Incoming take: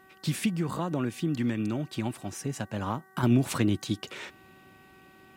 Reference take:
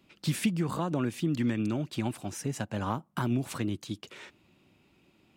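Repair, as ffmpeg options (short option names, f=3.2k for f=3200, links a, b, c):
-af "bandreject=f=379.9:t=h:w=4,bandreject=f=759.8:t=h:w=4,bandreject=f=1.1397k:t=h:w=4,bandreject=f=1.5196k:t=h:w=4,bandreject=f=1.8995k:t=h:w=4,agate=range=-21dB:threshold=-48dB,asetnsamples=n=441:p=0,asendcmd='3.23 volume volume -6.5dB',volume=0dB"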